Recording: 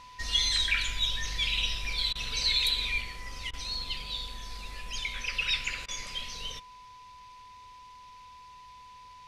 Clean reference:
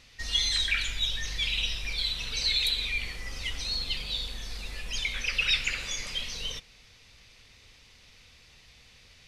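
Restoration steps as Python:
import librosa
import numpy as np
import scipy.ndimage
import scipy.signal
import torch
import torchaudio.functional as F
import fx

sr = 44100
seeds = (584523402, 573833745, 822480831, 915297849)

y = fx.notch(x, sr, hz=1000.0, q=30.0)
y = fx.fix_interpolate(y, sr, at_s=(2.13, 3.51, 5.86), length_ms=22.0)
y = fx.fix_level(y, sr, at_s=3.01, step_db=3.5)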